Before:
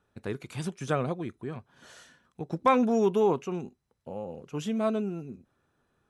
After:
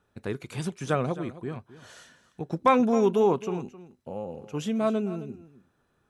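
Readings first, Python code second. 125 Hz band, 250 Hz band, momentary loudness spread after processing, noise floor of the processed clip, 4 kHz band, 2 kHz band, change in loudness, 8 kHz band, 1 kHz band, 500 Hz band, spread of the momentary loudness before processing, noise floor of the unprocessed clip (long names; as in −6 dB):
+2.0 dB, +2.0 dB, 20 LU, −71 dBFS, +2.0 dB, +2.0 dB, +2.0 dB, can't be measured, +2.0 dB, +2.0 dB, 17 LU, −76 dBFS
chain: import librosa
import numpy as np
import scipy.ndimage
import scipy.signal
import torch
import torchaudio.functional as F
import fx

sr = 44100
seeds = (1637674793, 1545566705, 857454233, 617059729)

y = x + 10.0 ** (-16.0 / 20.0) * np.pad(x, (int(264 * sr / 1000.0), 0))[:len(x)]
y = y * 10.0 ** (2.0 / 20.0)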